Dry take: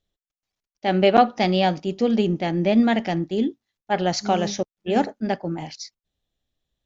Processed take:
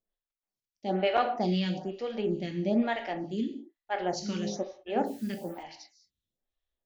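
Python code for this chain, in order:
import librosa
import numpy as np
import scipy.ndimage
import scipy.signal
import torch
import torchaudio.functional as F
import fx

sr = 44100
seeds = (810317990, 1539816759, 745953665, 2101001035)

y = fx.rev_gated(x, sr, seeds[0], gate_ms=230, shape='falling', drr_db=4.5)
y = fx.dmg_noise_colour(y, sr, seeds[1], colour='white', level_db=-48.0, at=(5.05, 5.62), fade=0.02)
y = fx.stagger_phaser(y, sr, hz=1.1)
y = y * librosa.db_to_amplitude(-7.5)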